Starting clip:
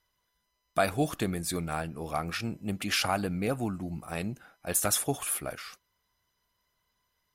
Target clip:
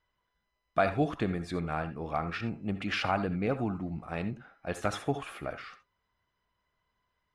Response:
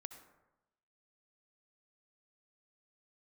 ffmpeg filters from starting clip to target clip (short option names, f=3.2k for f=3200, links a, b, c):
-filter_complex "[0:a]lowpass=2.7k[a];[1:a]atrim=start_sample=2205,atrim=end_sample=3969[b];[a][b]afir=irnorm=-1:irlink=0,volume=5.5dB"